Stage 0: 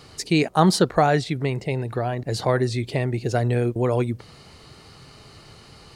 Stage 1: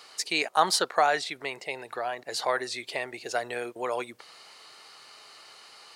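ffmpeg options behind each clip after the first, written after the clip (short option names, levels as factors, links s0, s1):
-af "highpass=780"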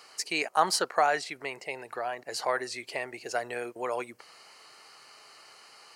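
-af "equalizer=f=3600:t=o:w=0.22:g=-13,volume=0.841"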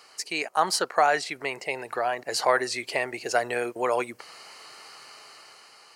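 -af "dynaudnorm=f=220:g=9:m=2.24"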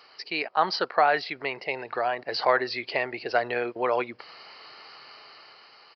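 -af "aresample=11025,aresample=44100"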